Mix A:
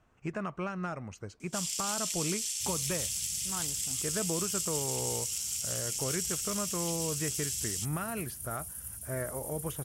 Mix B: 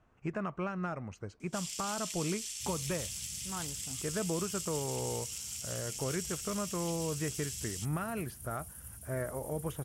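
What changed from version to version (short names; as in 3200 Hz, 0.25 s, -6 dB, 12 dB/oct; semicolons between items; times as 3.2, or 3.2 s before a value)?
master: add high shelf 3500 Hz -8 dB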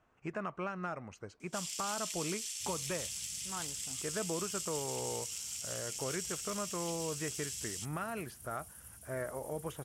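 second sound: add high shelf 10000 Hz -7.5 dB; master: add low shelf 240 Hz -9.5 dB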